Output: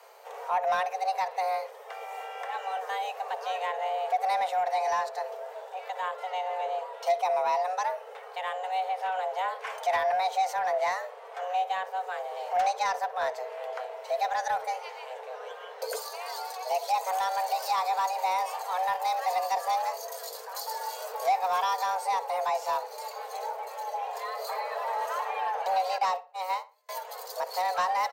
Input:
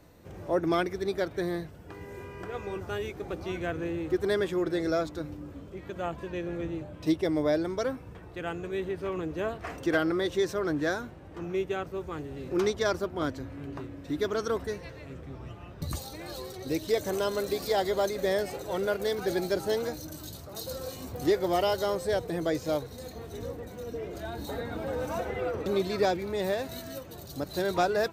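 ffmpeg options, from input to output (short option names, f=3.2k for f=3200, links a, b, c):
-filter_complex "[0:a]lowshelf=f=130:g=-11,asettb=1/sr,asplit=3[a][b][c];[a]atrim=end=25.984[d];[b]atrim=start=25.98:end=26.89,asetpts=PTS-STARTPTS,afade=t=in:d=0.004:c=qsin,afade=t=out:st=0.906:d=0.004:c=qsin,agate=range=-36dB:threshold=-29dB:ratio=16:detection=peak[e];[c]atrim=start=26.886[f];[d][e]acrossfade=d=0.004:c1=hsin:c2=qsin[g];[g][f]acrossfade=d=0.004:c1=qsin:c2=hsin,acrossover=split=400[h][i];[i]acompressor=threshold=-45dB:ratio=1.5[j];[h][j]amix=inputs=2:normalize=0,afreqshift=370,asoftclip=type=tanh:threshold=-23.5dB,asplit=2[k][l];[l]adelay=61,lowpass=f=3.1k:p=1,volume=-16dB,asplit=2[m][n];[n]adelay=61,lowpass=f=3.1k:p=1,volume=0.3,asplit=2[o][p];[p]adelay=61,lowpass=f=3.1k:p=1,volume=0.3[q];[k][m][o][q]amix=inputs=4:normalize=0,volume=5.5dB"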